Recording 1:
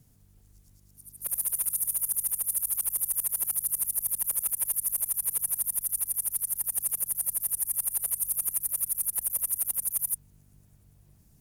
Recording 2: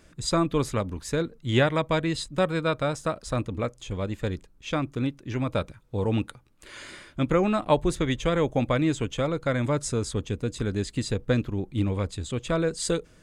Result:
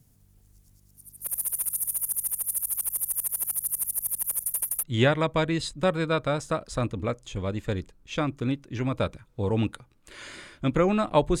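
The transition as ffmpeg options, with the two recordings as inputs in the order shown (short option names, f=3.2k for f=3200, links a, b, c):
-filter_complex "[0:a]apad=whole_dur=11.4,atrim=end=11.4,asplit=2[a][b];[a]atrim=end=4.432[c];[b]atrim=start=4.428:end=4.832,asetpts=PTS-STARTPTS,areverse[d];[1:a]atrim=start=1.378:end=7.95[e];[c][d]acrossfade=d=0.004:c1=hsin:c2=hsin[f];[f][e]acrossfade=d=0.004:c1=hsin:c2=hsin"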